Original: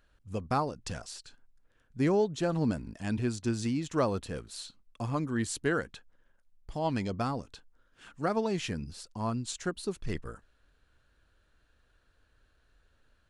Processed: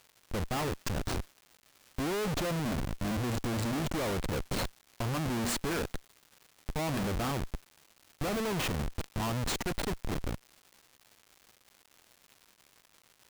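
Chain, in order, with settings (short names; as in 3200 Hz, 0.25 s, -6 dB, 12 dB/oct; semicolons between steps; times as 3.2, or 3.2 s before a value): de-hum 237.1 Hz, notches 39; Schmitt trigger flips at -38 dBFS; crackle 360/s -48 dBFS; gain +3 dB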